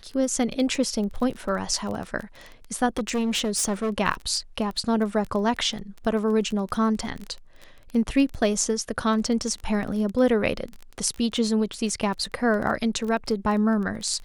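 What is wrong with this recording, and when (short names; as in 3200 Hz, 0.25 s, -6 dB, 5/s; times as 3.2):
crackle 19/s -29 dBFS
2.97–3.91 clipped -21 dBFS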